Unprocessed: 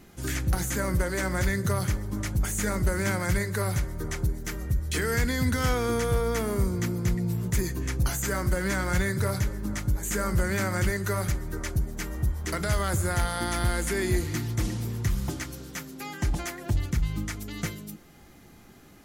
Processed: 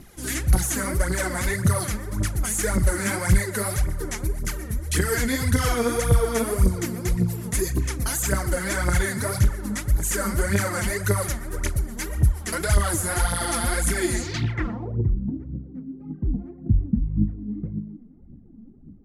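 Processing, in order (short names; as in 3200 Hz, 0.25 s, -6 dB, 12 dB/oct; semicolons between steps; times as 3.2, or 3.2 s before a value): band-limited delay 0.119 s, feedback 72%, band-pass 1100 Hz, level -15.5 dB; phaser 1.8 Hz, delay 4.8 ms, feedback 69%; low-pass sweep 11000 Hz -> 230 Hz, 14.09–15.18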